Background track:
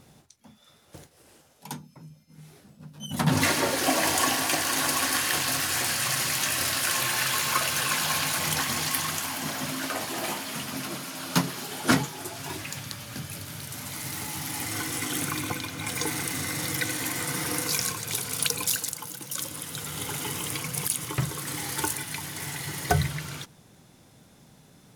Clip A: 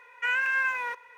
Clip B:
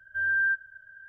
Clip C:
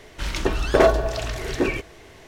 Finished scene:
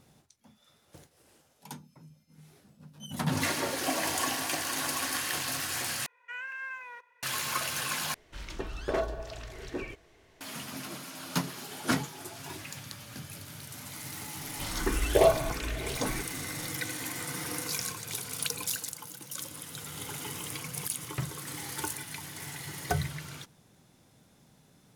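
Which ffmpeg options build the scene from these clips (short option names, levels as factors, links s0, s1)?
-filter_complex "[3:a]asplit=2[s0][s1];[0:a]volume=0.473[s2];[s1]asplit=2[s3][s4];[s4]afreqshift=1.5[s5];[s3][s5]amix=inputs=2:normalize=1[s6];[s2]asplit=3[s7][s8][s9];[s7]atrim=end=6.064[s10];[1:a]atrim=end=1.17,asetpts=PTS-STARTPTS,volume=0.224[s11];[s8]atrim=start=7.226:end=8.144[s12];[s0]atrim=end=2.27,asetpts=PTS-STARTPTS,volume=0.188[s13];[s9]atrim=start=10.406[s14];[s6]atrim=end=2.27,asetpts=PTS-STARTPTS,volume=0.596,afade=t=in:d=0.004:c=hsin,afade=t=out:st=2.266:d=0.004:c=hsin,adelay=14410[s15];[s10][s11]acrossfade=d=0.004:c1=hsin:c2=hsin[s16];[s16][s12]acrossfade=d=0.004:c1=hsin:c2=hsin[s17];[s17][s13]acrossfade=d=0.004:c1=hsin:c2=hsin[s18];[s18][s14]acrossfade=d=0.004:c1=hsin:c2=hsin[s19];[s19][s15]amix=inputs=2:normalize=0"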